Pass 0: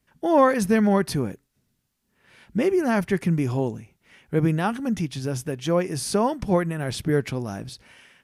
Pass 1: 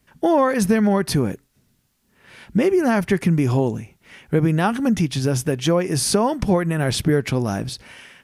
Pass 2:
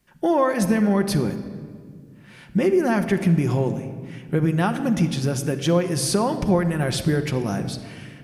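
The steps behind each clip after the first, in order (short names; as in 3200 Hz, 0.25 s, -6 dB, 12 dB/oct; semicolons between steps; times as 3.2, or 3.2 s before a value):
compressor 4:1, threshold -23 dBFS, peak gain reduction 10 dB; gain +8.5 dB
shoebox room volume 3300 m³, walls mixed, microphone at 0.92 m; gain -3.5 dB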